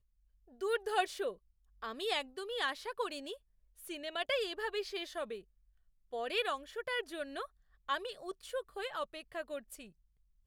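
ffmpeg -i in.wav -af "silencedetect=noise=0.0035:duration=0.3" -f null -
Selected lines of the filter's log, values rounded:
silence_start: 0.00
silence_end: 0.61 | silence_duration: 0.61
silence_start: 1.34
silence_end: 1.82 | silence_duration: 0.48
silence_start: 3.36
silence_end: 3.79 | silence_duration: 0.42
silence_start: 5.40
silence_end: 6.13 | silence_duration: 0.72
silence_start: 7.46
silence_end: 7.88 | silence_duration: 0.43
silence_start: 9.87
silence_end: 10.47 | silence_duration: 0.59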